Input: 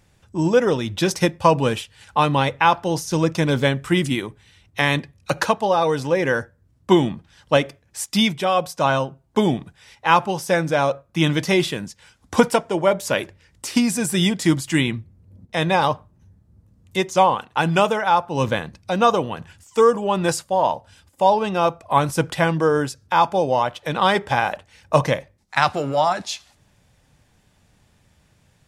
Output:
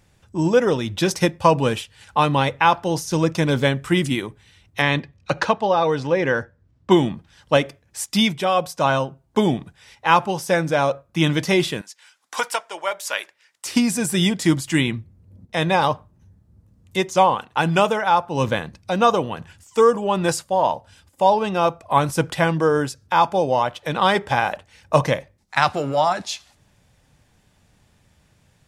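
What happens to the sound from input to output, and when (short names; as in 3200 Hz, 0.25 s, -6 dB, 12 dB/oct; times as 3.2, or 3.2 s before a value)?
4.82–6.91 LPF 5000 Hz
11.81–13.66 HPF 1000 Hz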